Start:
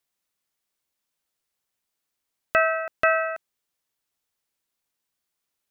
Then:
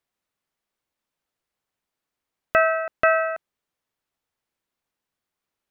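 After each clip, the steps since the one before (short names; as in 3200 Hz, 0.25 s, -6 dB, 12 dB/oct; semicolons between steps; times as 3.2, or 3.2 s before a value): high shelf 3300 Hz -11.5 dB; gain +3.5 dB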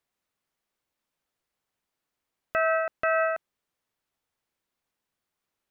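limiter -16 dBFS, peak gain reduction 9.5 dB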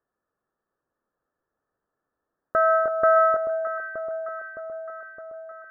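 rippled Chebyshev low-pass 1800 Hz, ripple 6 dB; echo with dull and thin repeats by turns 0.307 s, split 1100 Hz, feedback 78%, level -5 dB; gain +7.5 dB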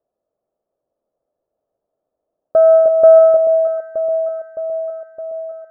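synth low-pass 630 Hz, resonance Q 4.9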